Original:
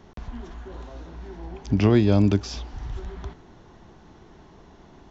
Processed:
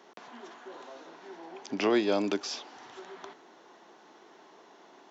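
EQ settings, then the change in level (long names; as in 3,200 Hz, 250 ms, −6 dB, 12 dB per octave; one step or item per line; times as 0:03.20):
Bessel high-pass filter 450 Hz, order 4
0.0 dB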